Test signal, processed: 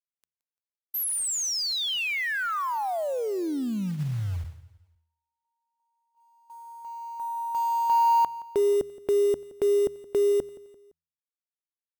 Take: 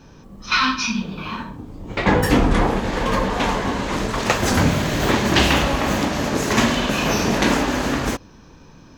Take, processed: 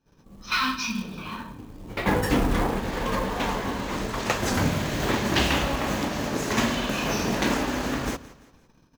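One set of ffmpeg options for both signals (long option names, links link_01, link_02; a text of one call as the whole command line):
ffmpeg -i in.wav -filter_complex "[0:a]agate=range=-21dB:threshold=-43dB:ratio=16:detection=peak,bandreject=frequency=81.12:width_type=h:width=4,bandreject=frequency=162.24:width_type=h:width=4,acrusher=bits=5:mode=log:mix=0:aa=0.000001,asplit=2[link_01][link_02];[link_02]aecho=0:1:171|342|513:0.112|0.0494|0.0217[link_03];[link_01][link_03]amix=inputs=2:normalize=0,volume=-6.5dB" out.wav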